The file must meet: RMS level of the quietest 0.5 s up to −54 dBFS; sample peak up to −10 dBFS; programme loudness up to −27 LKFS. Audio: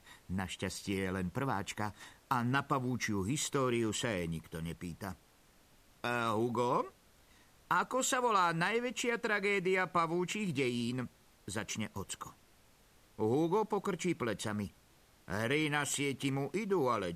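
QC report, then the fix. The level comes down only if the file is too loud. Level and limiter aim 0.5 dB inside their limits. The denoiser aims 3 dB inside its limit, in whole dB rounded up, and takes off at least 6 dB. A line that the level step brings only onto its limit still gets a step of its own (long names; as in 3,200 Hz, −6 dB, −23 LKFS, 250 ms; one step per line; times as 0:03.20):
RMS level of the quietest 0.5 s −65 dBFS: in spec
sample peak −17.0 dBFS: in spec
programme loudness −34.5 LKFS: in spec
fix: no processing needed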